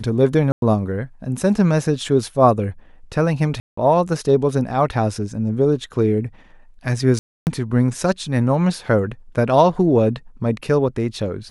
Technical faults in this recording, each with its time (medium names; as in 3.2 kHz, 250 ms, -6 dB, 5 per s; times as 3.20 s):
0.52–0.62 s: dropout 102 ms
3.60–3.77 s: dropout 174 ms
7.19–7.47 s: dropout 279 ms